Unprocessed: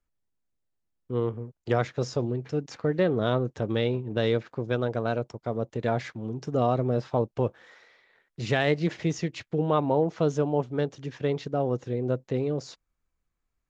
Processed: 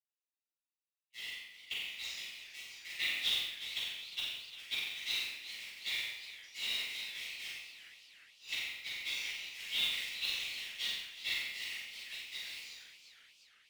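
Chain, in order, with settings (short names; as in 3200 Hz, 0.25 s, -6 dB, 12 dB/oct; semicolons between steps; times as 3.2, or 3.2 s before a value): Wiener smoothing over 41 samples; steep high-pass 2000 Hz 96 dB/oct; flipped gate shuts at -29 dBFS, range -29 dB; differentiator; shoebox room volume 340 m³, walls mixed, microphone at 7 m; modulation noise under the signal 12 dB; high shelf 5300 Hz -6.5 dB; on a send: flutter echo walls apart 7.6 m, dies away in 0.59 s; on the sum: warbling echo 0.356 s, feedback 58%, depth 152 cents, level -13.5 dB; gain +8.5 dB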